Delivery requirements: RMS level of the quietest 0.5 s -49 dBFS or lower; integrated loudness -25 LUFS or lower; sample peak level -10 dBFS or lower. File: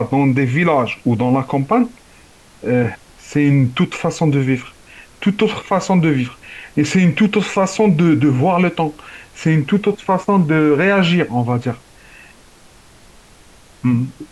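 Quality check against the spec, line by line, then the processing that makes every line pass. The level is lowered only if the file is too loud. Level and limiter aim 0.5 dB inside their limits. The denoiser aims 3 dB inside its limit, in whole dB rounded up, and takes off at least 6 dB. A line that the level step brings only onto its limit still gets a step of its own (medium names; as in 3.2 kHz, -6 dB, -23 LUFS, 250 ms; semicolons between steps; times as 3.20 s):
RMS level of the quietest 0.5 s -46 dBFS: fail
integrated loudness -16.5 LUFS: fail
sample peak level -5.0 dBFS: fail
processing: trim -9 dB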